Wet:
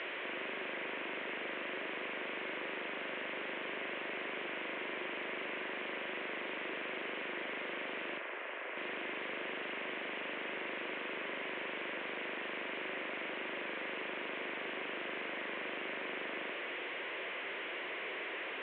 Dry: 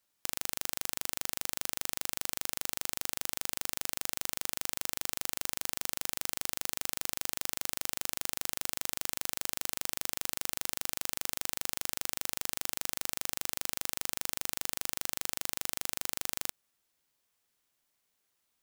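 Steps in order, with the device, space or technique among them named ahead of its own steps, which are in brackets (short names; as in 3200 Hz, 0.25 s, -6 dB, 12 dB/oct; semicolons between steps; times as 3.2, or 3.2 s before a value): digital answering machine (BPF 310–3200 Hz; delta modulation 16 kbps, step -44.5 dBFS; speaker cabinet 360–3800 Hz, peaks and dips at 370 Hz +8 dB, 520 Hz +3 dB, 820 Hz -8 dB, 1300 Hz -6 dB, 2100 Hz +3 dB); 8.18–8.77 three-band isolator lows -24 dB, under 350 Hz, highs -13 dB, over 2800 Hz; gain +10.5 dB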